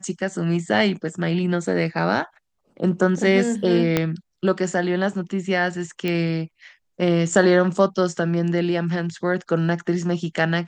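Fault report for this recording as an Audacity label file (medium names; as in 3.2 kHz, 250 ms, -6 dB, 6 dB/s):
3.970000	3.970000	pop -5 dBFS
6.080000	6.080000	pop -13 dBFS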